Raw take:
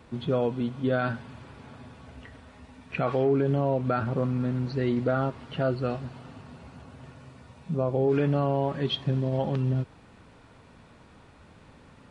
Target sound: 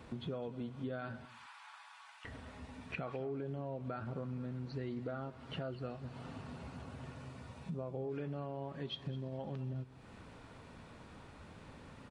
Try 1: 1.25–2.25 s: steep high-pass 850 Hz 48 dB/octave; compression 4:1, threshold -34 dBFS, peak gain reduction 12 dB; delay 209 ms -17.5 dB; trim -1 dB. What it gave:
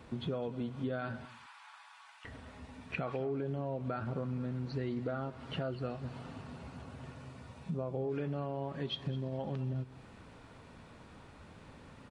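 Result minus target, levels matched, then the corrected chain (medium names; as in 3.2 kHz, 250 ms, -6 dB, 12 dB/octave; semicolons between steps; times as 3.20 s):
compression: peak gain reduction -4.5 dB
1.25–2.25 s: steep high-pass 850 Hz 48 dB/octave; compression 4:1, threshold -40 dBFS, peak gain reduction 16.5 dB; delay 209 ms -17.5 dB; trim -1 dB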